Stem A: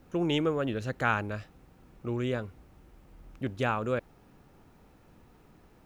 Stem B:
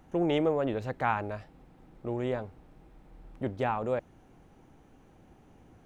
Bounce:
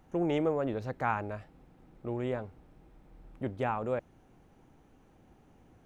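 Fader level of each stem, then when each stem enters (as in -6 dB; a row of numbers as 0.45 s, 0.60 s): -17.0 dB, -3.5 dB; 0.00 s, 0.00 s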